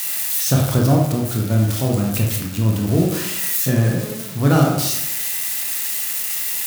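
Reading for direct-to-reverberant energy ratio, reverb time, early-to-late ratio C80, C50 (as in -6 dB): -1.0 dB, 0.90 s, 6.0 dB, 3.0 dB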